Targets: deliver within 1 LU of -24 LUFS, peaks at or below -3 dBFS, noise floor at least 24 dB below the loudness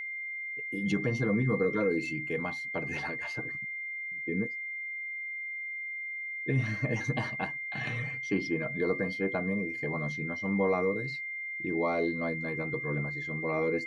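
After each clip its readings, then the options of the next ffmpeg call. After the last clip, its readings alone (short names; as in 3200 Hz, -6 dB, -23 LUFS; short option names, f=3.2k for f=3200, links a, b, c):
steady tone 2100 Hz; tone level -35 dBFS; loudness -32.0 LUFS; peak -16.5 dBFS; loudness target -24.0 LUFS
-> -af "bandreject=f=2.1k:w=30"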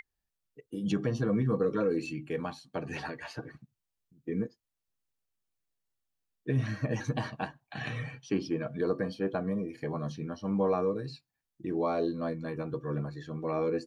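steady tone none; loudness -33.5 LUFS; peak -17.0 dBFS; loudness target -24.0 LUFS
-> -af "volume=9.5dB"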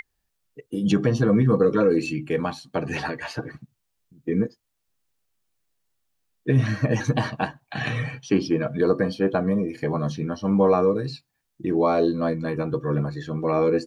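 loudness -24.0 LUFS; peak -7.5 dBFS; noise floor -77 dBFS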